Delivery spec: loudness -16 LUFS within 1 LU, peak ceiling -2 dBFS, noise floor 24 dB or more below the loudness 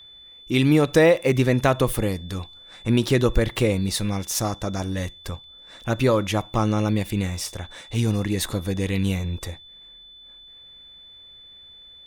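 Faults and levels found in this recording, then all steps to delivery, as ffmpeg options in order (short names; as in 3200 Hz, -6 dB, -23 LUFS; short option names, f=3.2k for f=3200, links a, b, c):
steady tone 3500 Hz; tone level -44 dBFS; loudness -23.0 LUFS; peak -5.0 dBFS; loudness target -16.0 LUFS
-> -af "bandreject=f=3.5k:w=30"
-af "volume=7dB,alimiter=limit=-2dB:level=0:latency=1"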